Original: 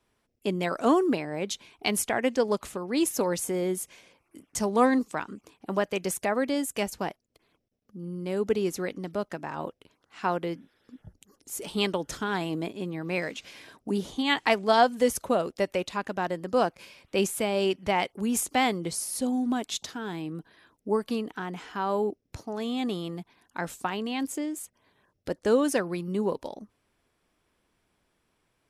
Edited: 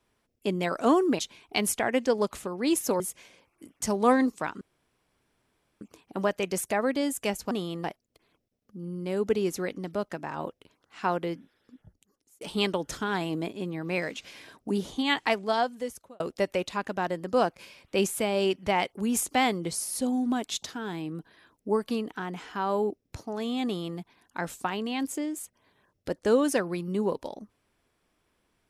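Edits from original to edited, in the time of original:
1.19–1.49 cut
3.3–3.73 cut
5.34 insert room tone 1.20 s
10.5–11.61 fade out
14.2–15.4 fade out
22.85–23.18 copy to 7.04

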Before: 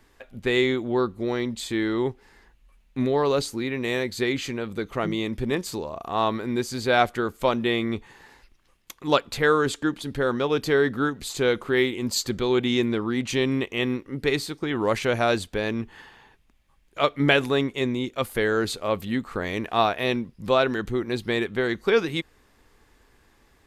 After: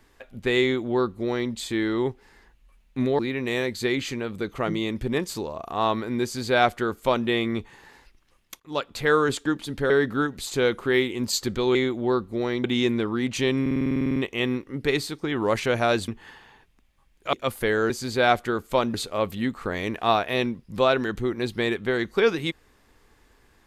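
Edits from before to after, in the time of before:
0.62–1.51 copy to 12.58
3.19–3.56 cut
6.6–7.64 copy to 18.64
8.97–9.51 fade in, from -16.5 dB
10.27–10.73 cut
13.55 stutter 0.05 s, 12 plays
15.47–15.79 cut
17.04–18.07 cut

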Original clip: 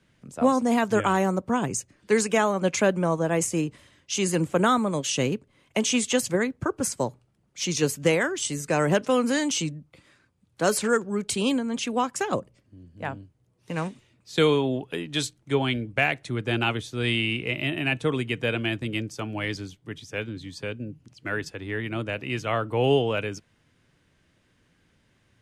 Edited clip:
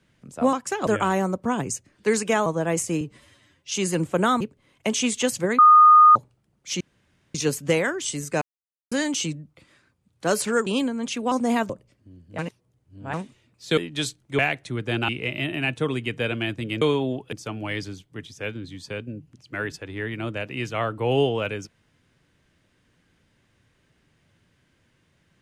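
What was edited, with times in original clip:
0.53–0.91 swap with 12.02–12.36
2.5–3.1 cut
3.65–4.12 stretch 1.5×
4.81–5.31 cut
6.49–7.06 bleep 1230 Hz -8.5 dBFS
7.71 insert room tone 0.54 s
8.78–9.28 mute
11.03–11.37 cut
13.05–13.8 reverse
14.44–14.95 move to 19.05
15.56–15.98 cut
16.68–17.32 cut

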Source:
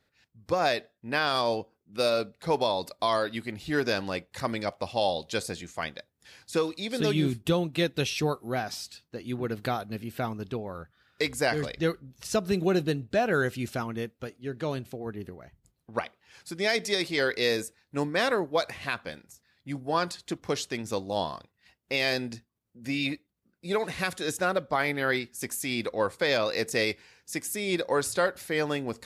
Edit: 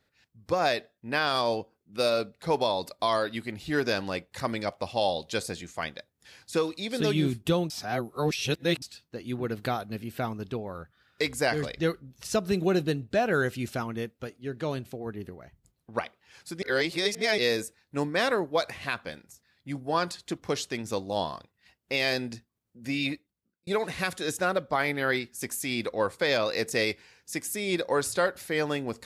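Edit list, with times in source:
7.7–8.82 reverse
16.62–17.38 reverse
23.11–23.67 fade out

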